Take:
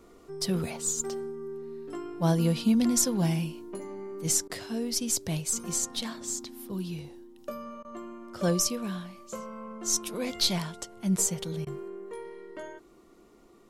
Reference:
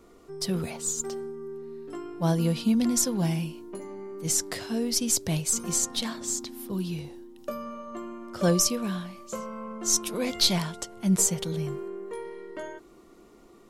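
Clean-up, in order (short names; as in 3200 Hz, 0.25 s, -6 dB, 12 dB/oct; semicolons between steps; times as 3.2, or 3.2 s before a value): interpolate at 4.48/7.83/11.65, 16 ms; gain 0 dB, from 4.38 s +3.5 dB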